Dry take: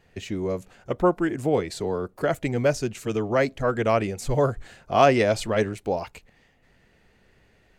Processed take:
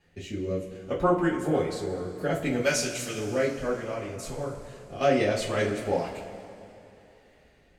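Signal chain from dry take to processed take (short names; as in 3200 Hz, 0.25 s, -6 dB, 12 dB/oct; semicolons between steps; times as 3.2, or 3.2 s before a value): 2.61–3.18 tilt shelf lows -8.5 dB, about 1200 Hz; 3.73–5.01 compressor 2:1, threshold -37 dBFS, peak gain reduction 12 dB; rotary speaker horn 0.65 Hz; two-slope reverb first 0.27 s, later 3 s, from -18 dB, DRR -5.5 dB; gain -6 dB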